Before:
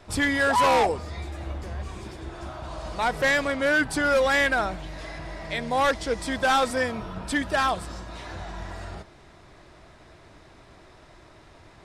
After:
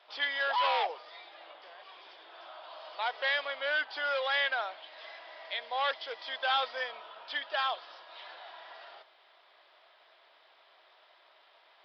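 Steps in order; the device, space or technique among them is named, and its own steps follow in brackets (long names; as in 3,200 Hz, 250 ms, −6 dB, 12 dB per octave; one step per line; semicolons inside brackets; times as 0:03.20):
musical greeting card (downsampling to 11,025 Hz; high-pass filter 580 Hz 24 dB per octave; parametric band 3,200 Hz +9.5 dB 0.36 octaves)
level −8 dB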